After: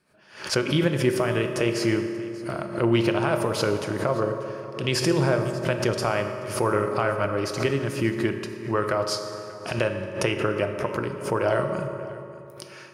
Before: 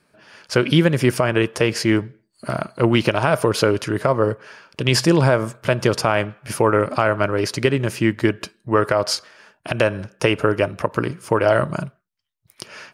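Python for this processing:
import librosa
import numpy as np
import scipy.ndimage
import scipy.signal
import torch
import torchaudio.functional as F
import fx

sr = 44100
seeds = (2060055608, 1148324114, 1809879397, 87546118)

y = x + 10.0 ** (-19.0 / 20.0) * np.pad(x, (int(587 * sr / 1000.0), 0))[:len(x)]
y = fx.rev_fdn(y, sr, rt60_s=2.7, lf_ratio=1.0, hf_ratio=0.55, size_ms=16.0, drr_db=5.0)
y = fx.pre_swell(y, sr, db_per_s=120.0)
y = y * 10.0 ** (-7.5 / 20.0)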